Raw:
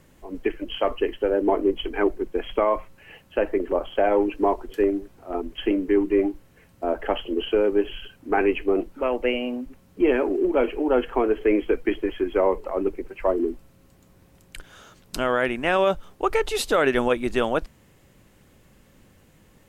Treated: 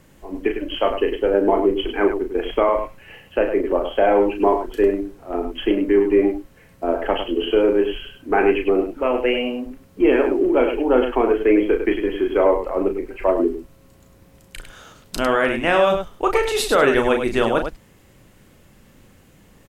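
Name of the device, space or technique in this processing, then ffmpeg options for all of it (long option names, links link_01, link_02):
slapback doubling: -filter_complex "[0:a]asplit=3[link_01][link_02][link_03];[link_02]adelay=35,volume=-6dB[link_04];[link_03]adelay=102,volume=-8dB[link_05];[link_01][link_04][link_05]amix=inputs=3:normalize=0,volume=3dB"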